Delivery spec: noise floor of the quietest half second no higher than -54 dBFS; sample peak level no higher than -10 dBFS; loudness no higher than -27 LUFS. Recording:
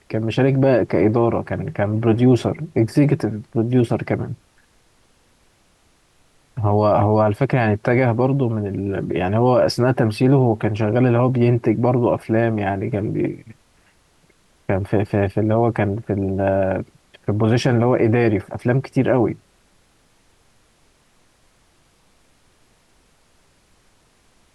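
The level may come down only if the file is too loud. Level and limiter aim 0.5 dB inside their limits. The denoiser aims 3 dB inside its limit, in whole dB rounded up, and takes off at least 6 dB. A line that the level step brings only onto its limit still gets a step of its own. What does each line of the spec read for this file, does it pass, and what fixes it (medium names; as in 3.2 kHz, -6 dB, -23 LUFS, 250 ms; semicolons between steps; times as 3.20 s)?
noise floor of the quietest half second -58 dBFS: pass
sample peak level -5.5 dBFS: fail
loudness -19.0 LUFS: fail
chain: trim -8.5 dB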